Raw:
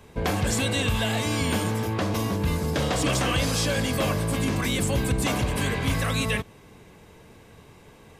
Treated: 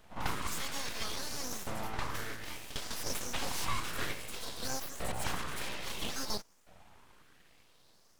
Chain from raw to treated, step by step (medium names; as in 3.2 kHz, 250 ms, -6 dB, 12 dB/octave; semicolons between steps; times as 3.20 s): reverse echo 53 ms -10 dB; LFO high-pass saw up 0.6 Hz 260–3900 Hz; full-wave rectifier; trim -8.5 dB